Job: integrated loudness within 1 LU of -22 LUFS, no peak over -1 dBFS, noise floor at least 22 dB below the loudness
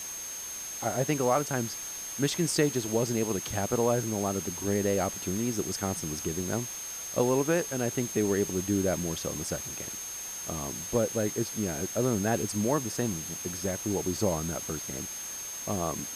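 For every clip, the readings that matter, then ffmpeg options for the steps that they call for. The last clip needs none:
steady tone 6400 Hz; tone level -37 dBFS; noise floor -39 dBFS; noise floor target -52 dBFS; loudness -30.0 LUFS; peak -13.0 dBFS; loudness target -22.0 LUFS
-> -af "bandreject=f=6.4k:w=30"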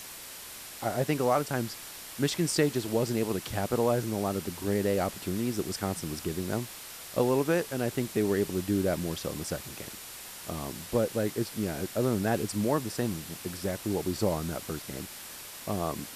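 steady tone none; noise floor -44 dBFS; noise floor target -53 dBFS
-> -af "afftdn=nr=9:nf=-44"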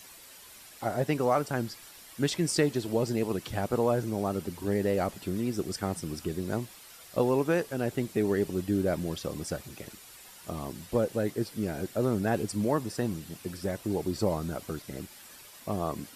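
noise floor -51 dBFS; noise floor target -53 dBFS
-> -af "afftdn=nr=6:nf=-51"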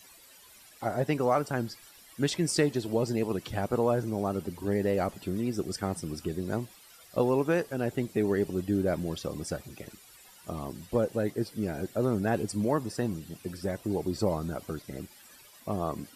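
noise floor -55 dBFS; loudness -31.0 LUFS; peak -13.5 dBFS; loudness target -22.0 LUFS
-> -af "volume=9dB"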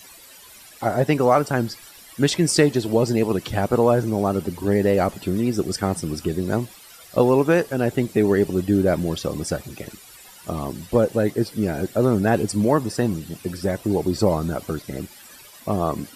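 loudness -22.0 LUFS; peak -4.5 dBFS; noise floor -46 dBFS

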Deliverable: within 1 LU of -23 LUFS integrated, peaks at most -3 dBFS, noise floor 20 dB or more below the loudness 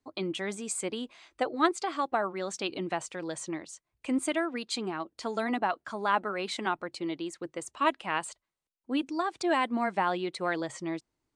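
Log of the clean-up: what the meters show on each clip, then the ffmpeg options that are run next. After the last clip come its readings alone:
loudness -32.0 LUFS; peak -10.5 dBFS; loudness target -23.0 LUFS
-> -af "volume=9dB,alimiter=limit=-3dB:level=0:latency=1"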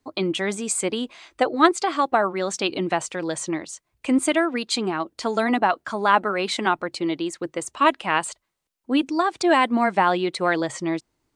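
loudness -23.0 LUFS; peak -3.0 dBFS; noise floor -76 dBFS

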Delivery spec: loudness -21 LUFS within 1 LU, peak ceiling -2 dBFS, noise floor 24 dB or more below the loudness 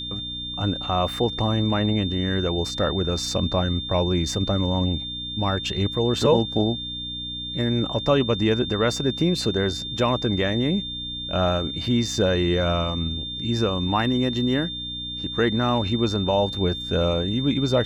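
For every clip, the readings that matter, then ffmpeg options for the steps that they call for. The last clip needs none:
hum 60 Hz; harmonics up to 300 Hz; hum level -36 dBFS; steady tone 3600 Hz; tone level -30 dBFS; loudness -23.5 LUFS; peak -7.0 dBFS; loudness target -21.0 LUFS
-> -af "bandreject=f=60:t=h:w=4,bandreject=f=120:t=h:w=4,bandreject=f=180:t=h:w=4,bandreject=f=240:t=h:w=4,bandreject=f=300:t=h:w=4"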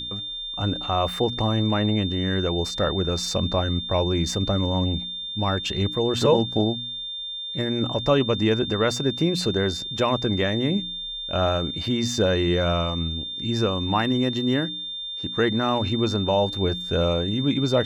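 hum none; steady tone 3600 Hz; tone level -30 dBFS
-> -af "bandreject=f=3.6k:w=30"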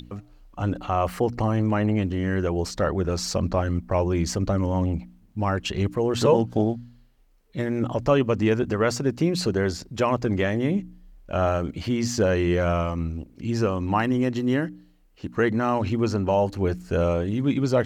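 steady tone none; loudness -24.5 LUFS; peak -7.0 dBFS; loudness target -21.0 LUFS
-> -af "volume=3.5dB"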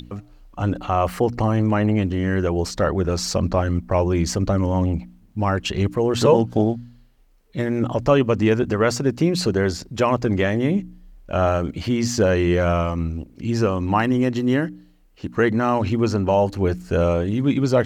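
loudness -21.0 LUFS; peak -3.5 dBFS; noise floor -52 dBFS

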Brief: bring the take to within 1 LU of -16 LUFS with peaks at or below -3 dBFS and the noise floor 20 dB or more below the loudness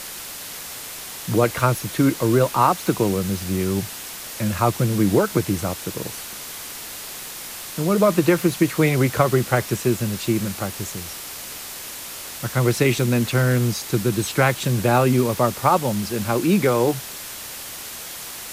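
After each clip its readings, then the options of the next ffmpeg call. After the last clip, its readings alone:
noise floor -35 dBFS; noise floor target -42 dBFS; loudness -22.0 LUFS; peak -3.0 dBFS; loudness target -16.0 LUFS
-> -af "afftdn=nr=7:nf=-35"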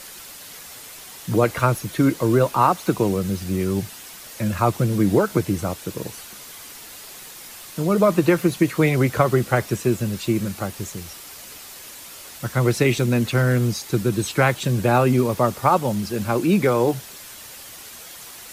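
noise floor -40 dBFS; noise floor target -41 dBFS
-> -af "afftdn=nr=6:nf=-40"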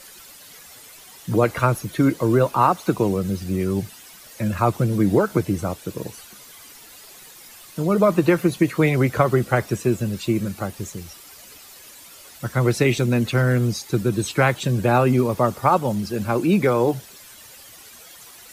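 noise floor -45 dBFS; loudness -21.0 LUFS; peak -3.5 dBFS; loudness target -16.0 LUFS
-> -af "volume=5dB,alimiter=limit=-3dB:level=0:latency=1"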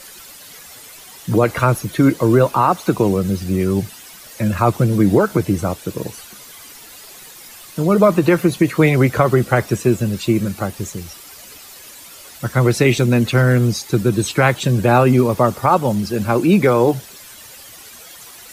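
loudness -16.5 LUFS; peak -3.0 dBFS; noise floor -40 dBFS

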